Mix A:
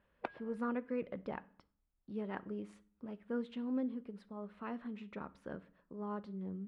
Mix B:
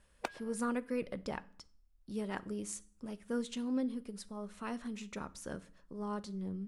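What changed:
speech: remove high-pass 160 Hz 6 dB/octave; master: remove distance through air 460 m

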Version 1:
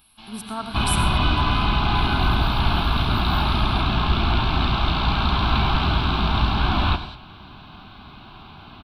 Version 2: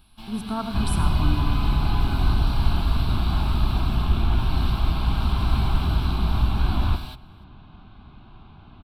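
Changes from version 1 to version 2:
first sound: remove Bessel low-pass 3.5 kHz, order 4; second sound -9.5 dB; master: add tilt EQ -2.5 dB/octave

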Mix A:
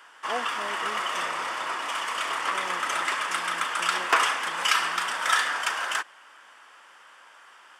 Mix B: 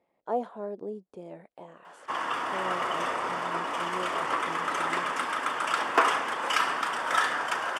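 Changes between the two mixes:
background: entry +1.85 s; master: add tilt shelf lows +8 dB, about 1.1 kHz

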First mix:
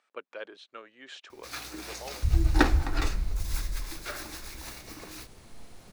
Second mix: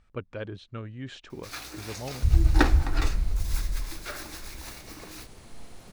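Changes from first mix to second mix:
speech: remove Bessel high-pass 580 Hz, order 4; second sound +3.5 dB

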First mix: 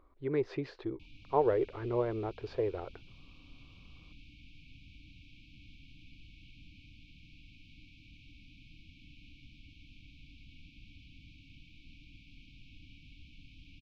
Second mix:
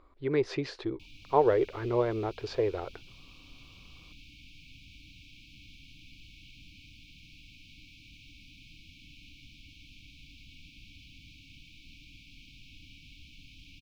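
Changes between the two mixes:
speech +3.0 dB; master: remove tape spacing loss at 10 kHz 21 dB

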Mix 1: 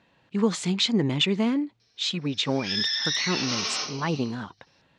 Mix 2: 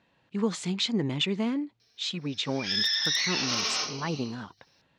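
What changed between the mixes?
speech -4.5 dB; background: remove low-pass 8.4 kHz 24 dB/octave

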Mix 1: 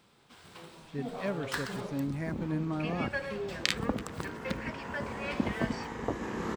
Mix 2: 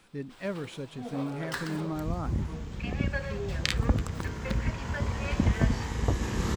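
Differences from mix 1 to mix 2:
speech: entry -0.80 s; second sound: remove three-band isolator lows -19 dB, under 190 Hz, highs -12 dB, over 2.2 kHz

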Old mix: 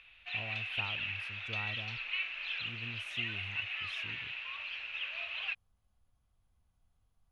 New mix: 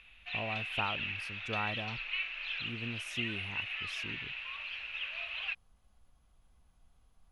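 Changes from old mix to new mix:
speech +9.5 dB; master: add peaking EQ 99 Hz -9.5 dB 0.71 oct

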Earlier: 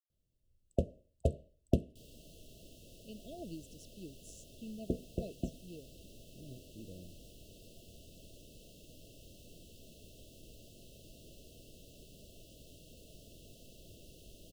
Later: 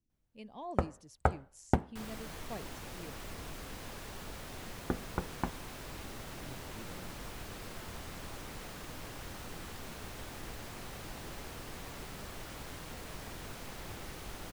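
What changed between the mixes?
speech: entry -2.70 s; second sound +10.0 dB; master: remove brick-wall FIR band-stop 690–2600 Hz

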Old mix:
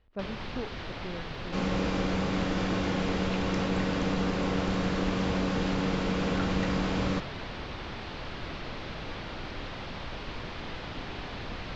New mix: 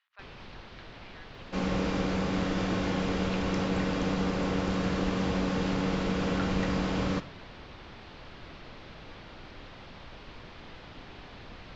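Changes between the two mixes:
speech: add high-pass 1.2 kHz 24 dB/octave; first sound -8.5 dB

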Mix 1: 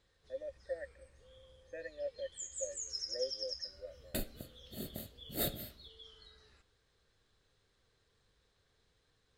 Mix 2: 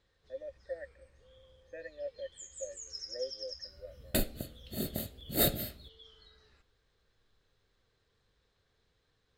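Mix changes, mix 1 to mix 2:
first sound: add distance through air 51 m; second sound +8.0 dB

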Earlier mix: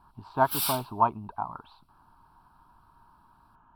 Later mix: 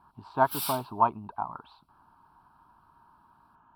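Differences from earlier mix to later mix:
speech: add high-pass 120 Hz 6 dB/octave; background -4.5 dB

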